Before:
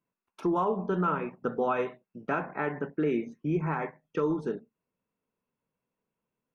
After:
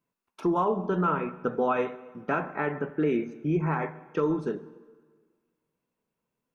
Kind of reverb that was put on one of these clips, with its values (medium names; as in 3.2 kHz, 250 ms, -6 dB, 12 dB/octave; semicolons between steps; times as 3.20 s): plate-style reverb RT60 1.6 s, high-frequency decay 0.8×, DRR 14.5 dB; trim +2 dB